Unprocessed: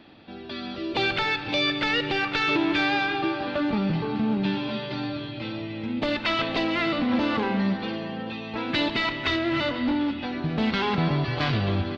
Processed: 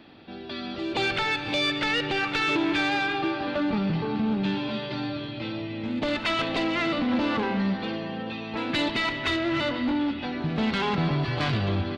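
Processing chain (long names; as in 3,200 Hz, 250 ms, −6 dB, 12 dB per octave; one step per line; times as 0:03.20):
soft clipping −16.5 dBFS, distortion −22 dB
on a send: backwards echo 176 ms −17.5 dB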